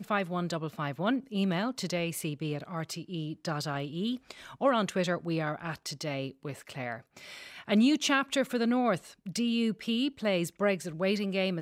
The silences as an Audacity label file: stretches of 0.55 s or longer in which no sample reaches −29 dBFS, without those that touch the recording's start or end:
6.960000	7.690000	silence